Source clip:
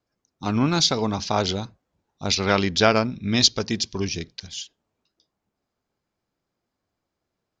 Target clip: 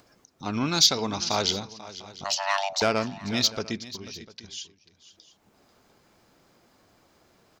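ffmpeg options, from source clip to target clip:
-filter_complex "[0:a]asoftclip=type=tanh:threshold=0.376,asplit=3[s0][s1][s2];[s0]afade=t=out:st=3.77:d=0.02[s3];[s1]acompressor=threshold=0.0178:ratio=5,afade=t=in:st=3.77:d=0.02,afade=t=out:st=4.48:d=0.02[s4];[s2]afade=t=in:st=4.48:d=0.02[s5];[s3][s4][s5]amix=inputs=3:normalize=0,lowshelf=f=150:g=-6.5,acompressor=mode=upward:threshold=0.0141:ratio=2.5,asettb=1/sr,asplit=3[s6][s7][s8];[s6]atrim=end=0.534[s9];[s7]atrim=start=0.53:end=1.6,asetpts=PTS-STARTPTS,afade=t=in:d=0.004:c=qsin,afade=t=out:st=1.066:d=0.004:c=qsin,highshelf=f=2500:g=9[s10];[s8]atrim=start=1.596[s11];[s9][s10]acrossfade=d=0.004:c1=hsin:c2=qsin[s12];[s12][s11]acrossfade=d=0.004:c1=qsin:c2=hsin,asettb=1/sr,asplit=3[s13][s14][s15];[s13]atrim=end=2.244[s16];[s14]atrim=start=2.24:end=2.82,asetpts=PTS-STARTPTS,afade=t=in:d=0.004:c=qsin,afade=t=out:st=0.576:d=0.004:c=qsin,afreqshift=490[s17];[s15]atrim=start=2.816[s18];[s16][s17]acrossfade=d=0.004:c1=hsin:c2=qsin[s19];[s19][s18]acrossfade=d=0.004:c1=qsin:c2=hsin,aecho=1:1:491|699:0.15|0.1,volume=0.631"

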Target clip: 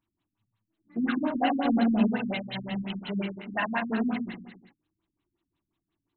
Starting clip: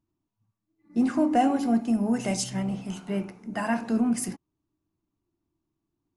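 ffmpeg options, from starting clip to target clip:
-filter_complex "[0:a]tiltshelf=f=810:g=-3,bandreject=f=78.3:t=h:w=4,bandreject=f=156.6:t=h:w=4,bandreject=f=234.9:t=h:w=4,bandreject=f=313.2:t=h:w=4,bandreject=f=391.5:t=h:w=4,bandreject=f=469.8:t=h:w=4,asplit=2[s0][s1];[s1]aecho=0:1:60|126|198.6|278.5|366.3:0.631|0.398|0.251|0.158|0.1[s2];[s0][s2]amix=inputs=2:normalize=0,crystalizer=i=8.5:c=0,asplit=2[s3][s4];[s4]acompressor=threshold=0.0891:ratio=6,volume=0.794[s5];[s3][s5]amix=inputs=2:normalize=0,highshelf=f=7700:g=5.5,asettb=1/sr,asplit=3[s6][s7][s8];[s6]atrim=end=1.654[s9];[s7]atrim=start=1.65:end=2.08,asetpts=PTS-STARTPTS,afade=t=in:d=0.004:c=qsin,afade=t=out:st=0.426:d=0.004:c=qsin,acontrast=39[s10];[s8]atrim=start=2.076[s11];[s9][s10]acrossfade=d=0.004:c1=hsin:c2=qsin[s12];[s12][s11]acrossfade=d=0.004:c1=qsin:c2=hsin,afftfilt=real='re*lt(b*sr/1024,260*pow(4300/260,0.5+0.5*sin(2*PI*5.6*pts/sr)))':imag='im*lt(b*sr/1024,260*pow(4300/260,0.5+0.5*sin(2*PI*5.6*pts/sr)))':win_size=1024:overlap=0.75,volume=0.447"

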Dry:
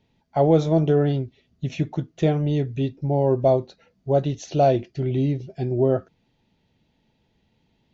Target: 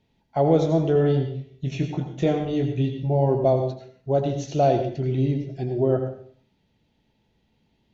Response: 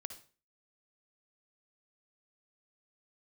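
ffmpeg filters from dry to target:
-filter_complex "[0:a]asettb=1/sr,asplit=3[s0][s1][s2];[s0]atrim=end=0.934[s3];[s1]atrim=start=0.93:end=3.29,asetpts=PTS-STARTPTS,afade=t=in:d=0.004:c=qsin,afade=t=out:st=2.356:d=0.004:c=qsin,asplit=2[s4][s5];[s5]adelay=23,volume=0.562[s6];[s4][s6]amix=inputs=2:normalize=0,atrim=end_sample=104076[s7];[s2]atrim=start=3.286[s8];[s3][s7]acrossfade=d=0.004:c1=hsin:c2=qsin[s9];[s9][s8]acrossfade=d=0.004:c1=qsin:c2=hsin[s10];[1:a]atrim=start_sample=2205,asetrate=29547,aresample=44100[s11];[s10][s11]afir=irnorm=-1:irlink=0"

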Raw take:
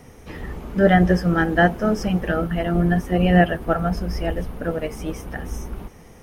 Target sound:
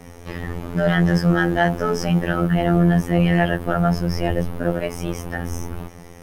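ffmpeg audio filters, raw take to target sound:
-af "apsyclip=7.94,afftfilt=real='hypot(re,im)*cos(PI*b)':imag='0':win_size=2048:overlap=0.75,volume=0.299"

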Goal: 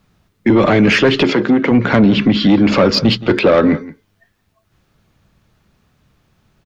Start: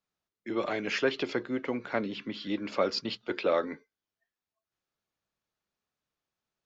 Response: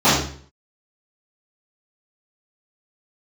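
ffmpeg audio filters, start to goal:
-filter_complex "[0:a]asplit=2[s0][s1];[s1]acompressor=threshold=0.01:ratio=6,volume=1.19[s2];[s0][s2]amix=inputs=2:normalize=0,bass=f=250:g=15,treble=f=4000:g=-6,asoftclip=type=tanh:threshold=0.106,asplit=3[s3][s4][s5];[s3]afade=t=out:st=1.23:d=0.02[s6];[s4]highpass=f=160:w=0.5412,highpass=f=160:w=1.3066,afade=t=in:st=1.23:d=0.02,afade=t=out:st=1.7:d=0.02[s7];[s5]afade=t=in:st=1.7:d=0.02[s8];[s6][s7][s8]amix=inputs=3:normalize=0,asplit=2[s9][s10];[s10]aecho=0:1:171:0.1[s11];[s9][s11]amix=inputs=2:normalize=0,alimiter=level_in=14.1:limit=0.891:release=50:level=0:latency=1,volume=0.668"

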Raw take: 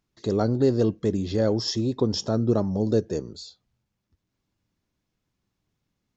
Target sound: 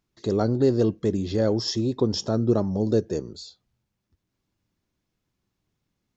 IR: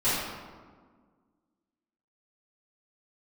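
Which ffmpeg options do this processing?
-af "equalizer=f=360:t=o:w=0.2:g=2.5"

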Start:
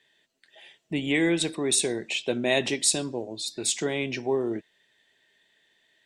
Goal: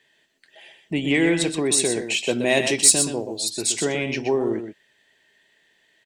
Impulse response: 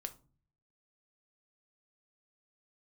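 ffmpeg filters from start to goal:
-filter_complex "[0:a]asettb=1/sr,asplit=3[s0][s1][s2];[s0]atrim=end=1.974[s3];[s1]atrim=start=1.97:end=3.5,asetpts=PTS-STARTPTS,afade=t=in:d=0.004:c=qsin,afade=t=out:st=1.526:d=0.004:c=qsin,highshelf=f=7700:g=12[s4];[s2]atrim=start=3.496[s5];[s3][s4]acrossfade=d=0.004:c1=hsin:c2=qsin[s6];[s6][s5]acrossfade=d=0.004:c1=qsin:c2=hsin,asplit=2[s7][s8];[s8]asoftclip=type=tanh:threshold=0.188,volume=0.631[s9];[s7][s9]amix=inputs=2:normalize=0,bandreject=f=3600:w=11,aecho=1:1:124:0.398"

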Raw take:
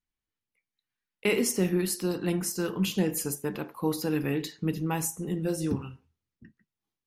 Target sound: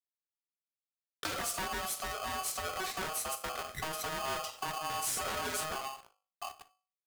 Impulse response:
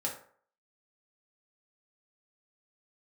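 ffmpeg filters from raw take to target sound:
-filter_complex "[0:a]asplit=3[s0][s1][s2];[s0]afade=t=out:st=5.06:d=0.02[s3];[s1]asplit=2[s4][s5];[s5]highpass=f=720:p=1,volume=35.5,asoftclip=type=tanh:threshold=0.112[s6];[s4][s6]amix=inputs=2:normalize=0,lowpass=f=5700:p=1,volume=0.501,afade=t=in:st=5.06:d=0.02,afade=t=out:st=5.63:d=0.02[s7];[s2]afade=t=in:st=5.63:d=0.02[s8];[s3][s7][s8]amix=inputs=3:normalize=0,highpass=120,lowshelf=f=220:g=10,acrusher=bits=9:mix=0:aa=0.000001,aeval=exprs='0.299*sin(PI/2*3.98*val(0)/0.299)':c=same,acompressor=threshold=0.0355:ratio=12,equalizer=f=8400:t=o:w=0.66:g=4.5,bandreject=f=50:t=h:w=6,bandreject=f=100:t=h:w=6,bandreject=f=150:t=h:w=6,bandreject=f=200:t=h:w=6,bandreject=f=250:t=h:w=6,bandreject=f=300:t=h:w=6,bandreject=f=350:t=h:w=6,bandreject=f=400:t=h:w=6,bandreject=f=450:t=h:w=6,asplit=2[s9][s10];[1:a]atrim=start_sample=2205,atrim=end_sample=3528[s11];[s10][s11]afir=irnorm=-1:irlink=0,volume=0.316[s12];[s9][s12]amix=inputs=2:normalize=0,aeval=exprs='val(0)*sgn(sin(2*PI*940*n/s))':c=same,volume=0.376"

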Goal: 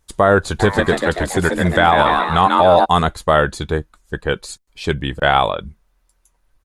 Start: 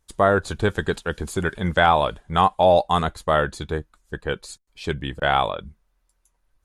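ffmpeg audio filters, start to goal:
-filter_complex "[0:a]asplit=3[s0][s1][s2];[s0]afade=t=out:st=0.59:d=0.02[s3];[s1]asplit=8[s4][s5][s6][s7][s8][s9][s10][s11];[s5]adelay=140,afreqshift=130,volume=0.562[s12];[s6]adelay=280,afreqshift=260,volume=0.292[s13];[s7]adelay=420,afreqshift=390,volume=0.151[s14];[s8]adelay=560,afreqshift=520,volume=0.0794[s15];[s9]adelay=700,afreqshift=650,volume=0.0412[s16];[s10]adelay=840,afreqshift=780,volume=0.0214[s17];[s11]adelay=980,afreqshift=910,volume=0.0111[s18];[s4][s12][s13][s14][s15][s16][s17][s18]amix=inputs=8:normalize=0,afade=t=in:st=0.59:d=0.02,afade=t=out:st=2.84:d=0.02[s19];[s2]afade=t=in:st=2.84:d=0.02[s20];[s3][s19][s20]amix=inputs=3:normalize=0,alimiter=level_in=2.37:limit=0.891:release=50:level=0:latency=1,volume=0.891"

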